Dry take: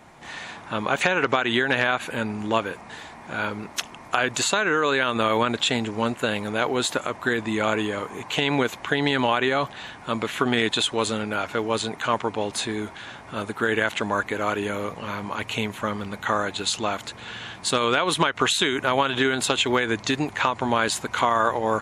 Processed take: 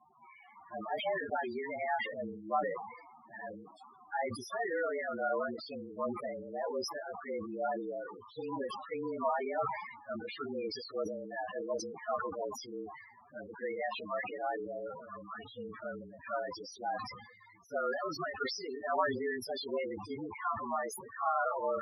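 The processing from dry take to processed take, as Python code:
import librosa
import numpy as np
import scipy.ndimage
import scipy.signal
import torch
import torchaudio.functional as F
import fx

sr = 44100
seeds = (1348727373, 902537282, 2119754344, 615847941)

y = fx.partial_stretch(x, sr, pct=111)
y = fx.spec_topn(y, sr, count=8)
y = fx.bandpass_q(y, sr, hz=820.0, q=1.5)
y = fx.sustainer(y, sr, db_per_s=60.0)
y = F.gain(torch.from_numpy(y), -2.5).numpy()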